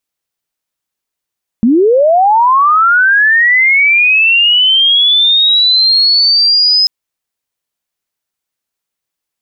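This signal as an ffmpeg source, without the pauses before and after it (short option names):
-f lavfi -i "aevalsrc='pow(10,(-5-1*t/5.24)/20)*sin(2*PI*(210*t+4890*t*t/(2*5.24)))':d=5.24:s=44100"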